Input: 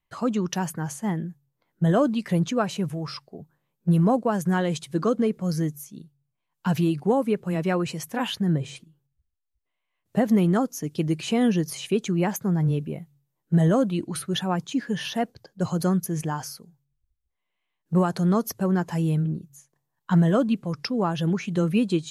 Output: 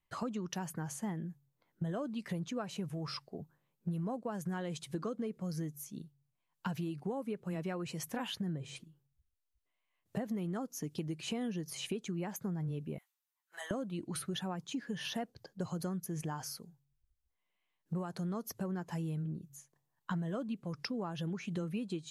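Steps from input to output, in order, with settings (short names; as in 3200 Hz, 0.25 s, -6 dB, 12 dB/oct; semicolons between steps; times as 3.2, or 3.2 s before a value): 12.98–13.71 HPF 1000 Hz 24 dB/oct; compressor 6:1, threshold -32 dBFS, peak gain reduction 15.5 dB; gain -3.5 dB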